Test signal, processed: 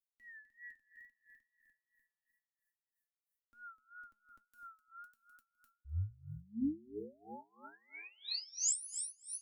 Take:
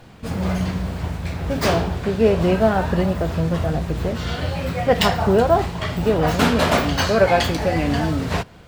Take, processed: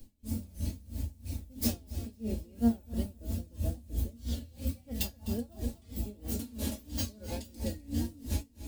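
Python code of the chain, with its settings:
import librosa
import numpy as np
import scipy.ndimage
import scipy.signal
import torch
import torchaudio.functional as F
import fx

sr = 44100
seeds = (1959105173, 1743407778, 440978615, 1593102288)

p1 = fx.comb_fb(x, sr, f0_hz=220.0, decay_s=0.28, harmonics='all', damping=0.0, mix_pct=80)
p2 = fx.wow_flutter(p1, sr, seeds[0], rate_hz=2.1, depth_cents=100.0)
p3 = fx.peak_eq(p2, sr, hz=8700.0, db=-2.5, octaves=2.4)
p4 = p3 + 0.48 * np.pad(p3, (int(3.6 * sr / 1000.0), 0))[:len(p3)]
p5 = fx.rider(p4, sr, range_db=4, speed_s=0.5)
p6 = p4 + (p5 * librosa.db_to_amplitude(-0.5))
p7 = fx.curve_eq(p6, sr, hz=(100.0, 170.0, 260.0, 380.0, 1300.0, 11000.0), db=(0, -15, -3, -12, -28, 8))
p8 = p7 + fx.echo_feedback(p7, sr, ms=253, feedback_pct=48, wet_db=-11, dry=0)
y = p8 * 10.0 ** (-24 * (0.5 - 0.5 * np.cos(2.0 * np.pi * 3.0 * np.arange(len(p8)) / sr)) / 20.0)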